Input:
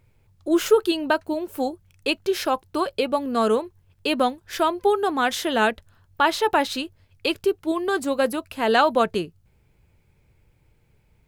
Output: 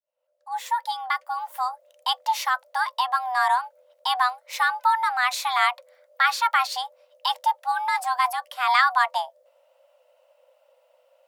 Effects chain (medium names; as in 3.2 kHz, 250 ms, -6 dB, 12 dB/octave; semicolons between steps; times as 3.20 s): fade-in on the opening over 1.73 s; frequency shift +500 Hz; trim -1 dB